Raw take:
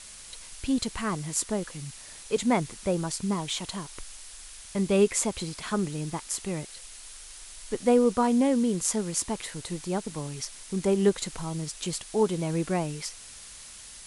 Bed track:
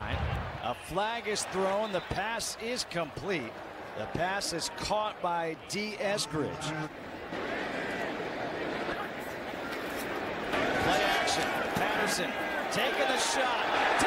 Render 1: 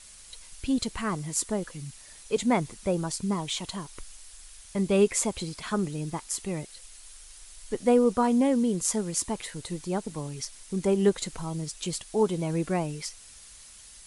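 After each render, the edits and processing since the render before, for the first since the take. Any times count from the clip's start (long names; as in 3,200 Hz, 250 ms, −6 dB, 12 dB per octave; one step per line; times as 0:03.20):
broadband denoise 6 dB, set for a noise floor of −46 dBFS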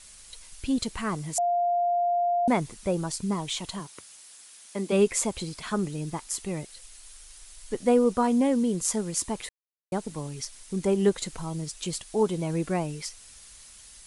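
0:01.38–0:02.48: beep over 700 Hz −21.5 dBFS
0:03.79–0:04.91: high-pass filter 94 Hz → 240 Hz 24 dB per octave
0:09.49–0:09.92: silence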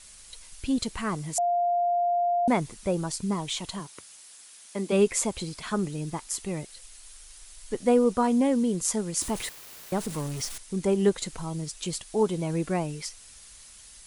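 0:09.21–0:10.58: converter with a step at zero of −34 dBFS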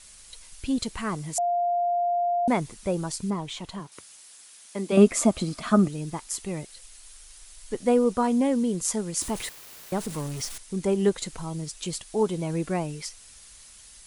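0:03.30–0:03.92: high-shelf EQ 3,700 Hz −10.5 dB
0:04.97–0:05.88: hollow resonant body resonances 240/640/1,200 Hz, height 12 dB, ringing for 25 ms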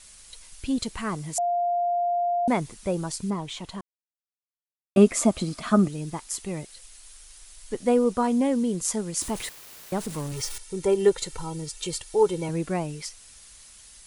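0:03.81–0:04.96: silence
0:10.32–0:12.49: comb filter 2.2 ms, depth 74%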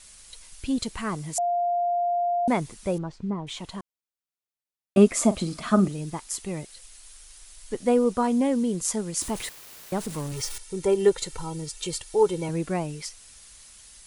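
0:02.98–0:03.47: head-to-tape spacing loss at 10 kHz 36 dB
0:05.15–0:06.04: double-tracking delay 41 ms −14 dB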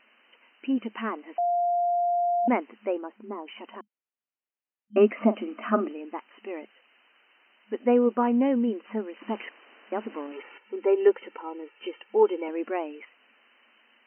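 brick-wall band-pass 210–3,100 Hz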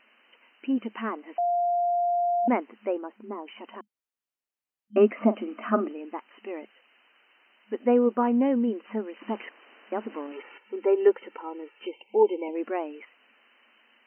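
dynamic equaliser 2,700 Hz, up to −3 dB, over −47 dBFS, Q 1.4
0:11.86–0:12.56: gain on a spectral selection 1,000–2,000 Hz −28 dB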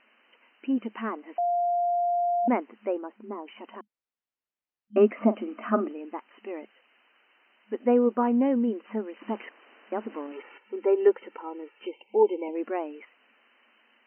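high-frequency loss of the air 170 metres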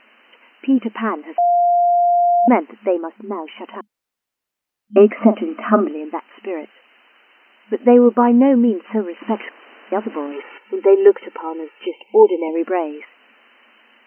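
level +11 dB
brickwall limiter −1 dBFS, peak gain reduction 3 dB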